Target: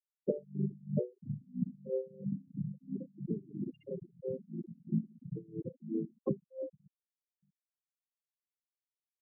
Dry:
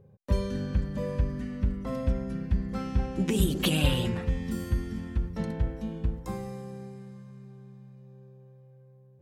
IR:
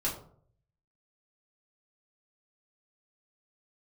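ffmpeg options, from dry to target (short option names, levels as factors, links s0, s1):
-filter_complex "[0:a]aecho=1:1:164|328|492:0.158|0.0618|0.0241,alimiter=limit=0.0841:level=0:latency=1:release=21,highpass=f=200:w=0.5412,highpass=f=200:w=1.3066,equalizer=f=260:t=q:w=4:g=-6,equalizer=f=950:t=q:w=4:g=-5,equalizer=f=1400:t=q:w=4:g=-4,lowpass=f=2700:w=0.5412,lowpass=f=2700:w=1.3066,acrusher=bits=9:mix=0:aa=0.000001,afftfilt=real='re*gte(hypot(re,im),0.00631)':imag='im*gte(hypot(re,im),0.00631)':win_size=1024:overlap=0.75,acompressor=threshold=0.00794:ratio=10,flanger=delay=6.3:depth=3.9:regen=2:speed=0.73:shape=triangular,asplit=2[s0][s1];[s1]asetrate=33038,aresample=44100,atempo=1.33484,volume=0.891[s2];[s0][s2]amix=inputs=2:normalize=0,afftfilt=real='re*gte(hypot(re,im),0.0282)':imag='im*gte(hypot(re,im),0.0282)':win_size=1024:overlap=0.75,equalizer=f=940:w=5.9:g=-7,aeval=exprs='val(0)*pow(10,-25*(0.5-0.5*cos(2*PI*3*n/s))/20)':c=same,volume=5.96"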